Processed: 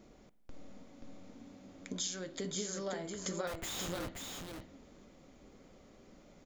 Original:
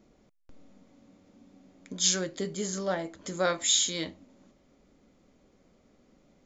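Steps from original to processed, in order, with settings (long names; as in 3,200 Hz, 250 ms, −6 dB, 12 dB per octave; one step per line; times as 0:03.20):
parametric band 200 Hz −2.5 dB 1.5 octaves
downward compressor 8 to 1, threshold −41 dBFS, peak gain reduction 20 dB
0:03.47–0:04.08: comparator with hysteresis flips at −46 dBFS
single-tap delay 530 ms −4.5 dB
spring reverb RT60 1.2 s, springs 48 ms, DRR 17 dB
level +4 dB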